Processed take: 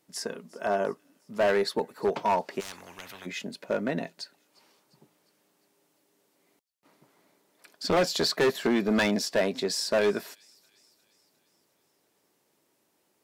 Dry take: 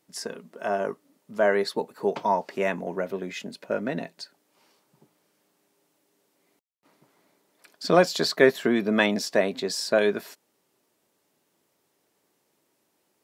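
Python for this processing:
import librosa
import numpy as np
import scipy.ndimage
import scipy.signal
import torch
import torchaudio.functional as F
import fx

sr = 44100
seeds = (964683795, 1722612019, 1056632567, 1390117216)

y = fx.echo_wet_highpass(x, sr, ms=352, feedback_pct=55, hz=4100.0, wet_db=-21.5)
y = np.clip(10.0 ** (19.0 / 20.0) * y, -1.0, 1.0) / 10.0 ** (19.0 / 20.0)
y = fx.spectral_comp(y, sr, ratio=10.0, at=(2.59, 3.25), fade=0.02)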